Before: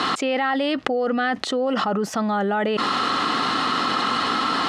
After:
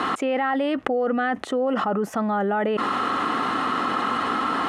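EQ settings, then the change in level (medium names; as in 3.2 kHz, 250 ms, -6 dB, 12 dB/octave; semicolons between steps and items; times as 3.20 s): peaking EQ 150 Hz -4 dB 0.68 oct; peaking EQ 4.6 kHz -15 dB 1.2 oct; band-stop 7.7 kHz, Q 24; 0.0 dB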